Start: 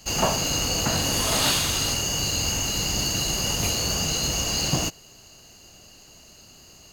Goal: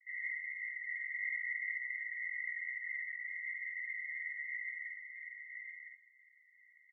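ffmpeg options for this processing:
ffmpeg -i in.wav -filter_complex "[0:a]afreqshift=28,aeval=exprs='(tanh(22.4*val(0)+0.7)-tanh(0.7))/22.4':channel_layout=same,asuperpass=centerf=2000:order=20:qfactor=7.1,asplit=2[link_01][link_02];[link_02]adelay=50,volume=-3dB[link_03];[link_01][link_03]amix=inputs=2:normalize=0,asplit=2[link_04][link_05];[link_05]aecho=0:1:1007:0.501[link_06];[link_04][link_06]amix=inputs=2:normalize=0,volume=8.5dB" out.wav

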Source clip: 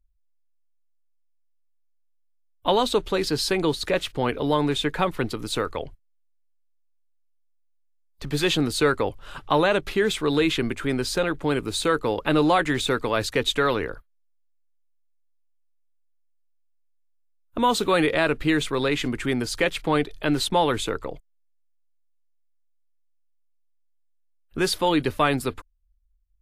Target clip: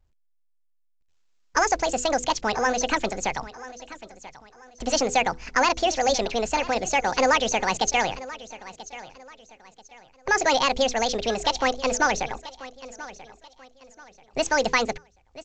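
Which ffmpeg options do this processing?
ffmpeg -i in.wav -af "bandreject=frequency=48.35:width_type=h:width=4,bandreject=frequency=96.7:width_type=h:width=4,bandreject=frequency=145.05:width_type=h:width=4,bandreject=frequency=193.4:width_type=h:width=4,bandreject=frequency=241.75:width_type=h:width=4,bandreject=frequency=290.1:width_type=h:width=4,asetrate=75411,aresample=44100,aecho=1:1:986|1972|2958:0.141|0.0452|0.0145" -ar 16000 -c:a pcm_mulaw out.wav

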